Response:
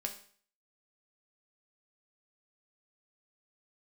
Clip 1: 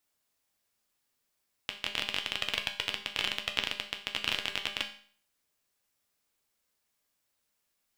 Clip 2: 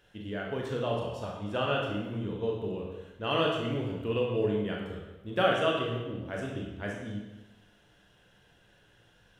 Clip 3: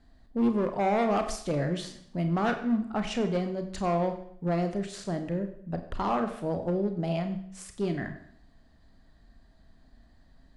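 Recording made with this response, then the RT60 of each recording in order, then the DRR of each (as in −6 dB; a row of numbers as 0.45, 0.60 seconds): 1; 0.50, 1.1, 0.65 seconds; 3.0, −1.5, 6.0 decibels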